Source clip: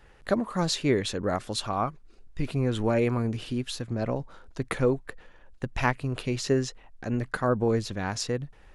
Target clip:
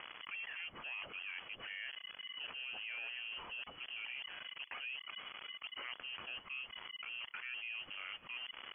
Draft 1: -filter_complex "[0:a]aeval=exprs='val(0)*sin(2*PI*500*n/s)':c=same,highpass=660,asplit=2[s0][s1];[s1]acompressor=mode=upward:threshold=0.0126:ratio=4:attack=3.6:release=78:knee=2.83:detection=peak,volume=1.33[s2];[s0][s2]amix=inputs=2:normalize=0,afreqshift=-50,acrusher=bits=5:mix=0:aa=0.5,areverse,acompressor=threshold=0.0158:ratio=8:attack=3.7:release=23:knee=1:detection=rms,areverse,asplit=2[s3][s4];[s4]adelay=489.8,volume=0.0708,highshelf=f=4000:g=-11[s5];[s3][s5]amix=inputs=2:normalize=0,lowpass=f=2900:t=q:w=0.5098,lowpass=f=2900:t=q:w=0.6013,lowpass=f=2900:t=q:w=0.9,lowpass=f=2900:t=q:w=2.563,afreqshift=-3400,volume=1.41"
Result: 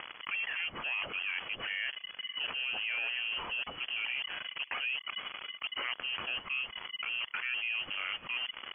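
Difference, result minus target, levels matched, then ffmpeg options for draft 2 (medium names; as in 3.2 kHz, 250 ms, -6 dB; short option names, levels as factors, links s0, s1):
compression: peak gain reduction -9.5 dB
-filter_complex "[0:a]aeval=exprs='val(0)*sin(2*PI*500*n/s)':c=same,highpass=660,asplit=2[s0][s1];[s1]acompressor=mode=upward:threshold=0.0126:ratio=4:attack=3.6:release=78:knee=2.83:detection=peak,volume=1.33[s2];[s0][s2]amix=inputs=2:normalize=0,afreqshift=-50,acrusher=bits=5:mix=0:aa=0.5,areverse,acompressor=threshold=0.00447:ratio=8:attack=3.7:release=23:knee=1:detection=rms,areverse,asplit=2[s3][s4];[s4]adelay=489.8,volume=0.0708,highshelf=f=4000:g=-11[s5];[s3][s5]amix=inputs=2:normalize=0,lowpass=f=2900:t=q:w=0.5098,lowpass=f=2900:t=q:w=0.6013,lowpass=f=2900:t=q:w=0.9,lowpass=f=2900:t=q:w=2.563,afreqshift=-3400,volume=1.41"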